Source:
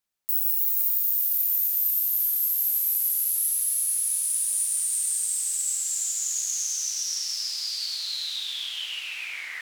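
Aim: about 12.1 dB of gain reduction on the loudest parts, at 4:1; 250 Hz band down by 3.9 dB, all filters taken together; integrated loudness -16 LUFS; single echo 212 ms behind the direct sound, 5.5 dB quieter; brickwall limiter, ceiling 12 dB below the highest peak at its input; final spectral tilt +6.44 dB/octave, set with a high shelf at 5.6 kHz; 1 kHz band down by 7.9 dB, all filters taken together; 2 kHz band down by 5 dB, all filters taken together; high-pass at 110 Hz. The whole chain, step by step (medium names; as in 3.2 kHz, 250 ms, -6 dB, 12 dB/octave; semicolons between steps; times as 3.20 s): high-pass 110 Hz; peaking EQ 250 Hz -4.5 dB; peaking EQ 1 kHz -8.5 dB; peaking EQ 2 kHz -6 dB; treble shelf 5.6 kHz +6 dB; compression 4:1, threshold -30 dBFS; peak limiter -26 dBFS; delay 212 ms -5.5 dB; trim +15 dB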